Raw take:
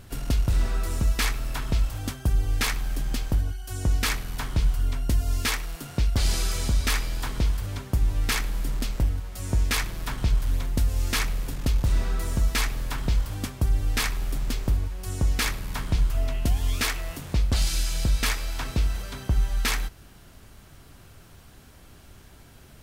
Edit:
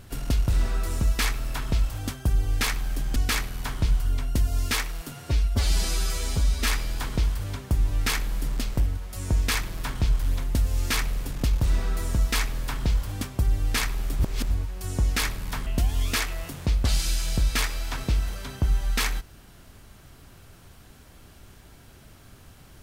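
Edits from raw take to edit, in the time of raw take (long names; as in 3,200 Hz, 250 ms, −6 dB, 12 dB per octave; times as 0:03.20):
0:03.16–0:03.90: remove
0:05.86–0:06.89: time-stretch 1.5×
0:14.42–0:14.73: reverse
0:15.89–0:16.34: remove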